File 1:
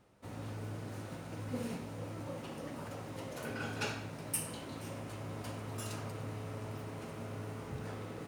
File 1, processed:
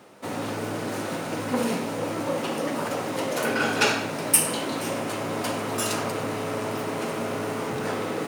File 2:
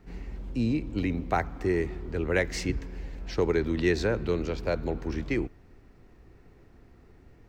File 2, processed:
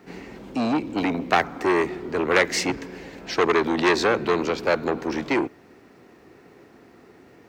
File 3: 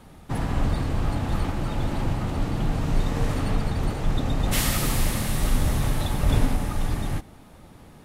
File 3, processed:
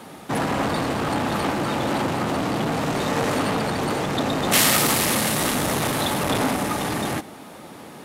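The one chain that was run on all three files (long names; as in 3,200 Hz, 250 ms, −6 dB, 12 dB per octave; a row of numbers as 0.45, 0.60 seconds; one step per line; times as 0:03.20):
high-pass filter 240 Hz 12 dB per octave
saturating transformer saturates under 1,700 Hz
normalise the peak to −3 dBFS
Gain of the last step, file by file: +18.0, +10.5, +11.5 decibels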